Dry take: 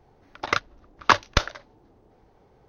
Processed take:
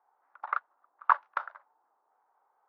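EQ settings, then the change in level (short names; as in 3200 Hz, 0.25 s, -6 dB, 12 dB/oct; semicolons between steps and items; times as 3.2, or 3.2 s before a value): Butterworth band-pass 1100 Hz, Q 1.7; -4.0 dB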